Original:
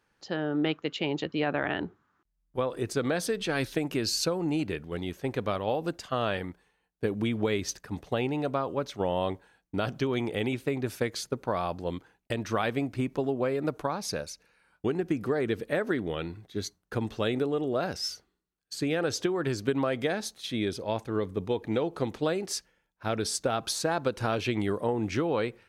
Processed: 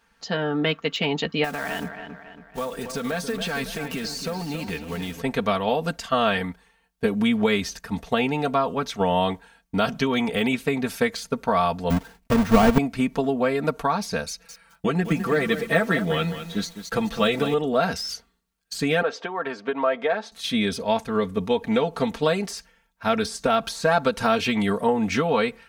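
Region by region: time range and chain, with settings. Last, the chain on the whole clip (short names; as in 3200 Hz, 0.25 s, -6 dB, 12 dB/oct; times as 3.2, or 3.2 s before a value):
1.44–5.22 block floating point 5-bit + compressor 3:1, threshold -33 dBFS + dark delay 0.277 s, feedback 46%, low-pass 2900 Hz, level -8.5 dB
11.9–12.78 half-waves squared off + low shelf 460 Hz +4.5 dB
14.28–17.54 comb 6 ms, depth 66% + lo-fi delay 0.206 s, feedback 35%, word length 8-bit, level -10.5 dB
19.02–20.32 BPF 710–3400 Hz + tilt shelf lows +9 dB, about 1100 Hz
whole clip: de-esser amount 95%; bell 360 Hz -8 dB 0.99 oct; comb 4.4 ms, depth 78%; gain +8 dB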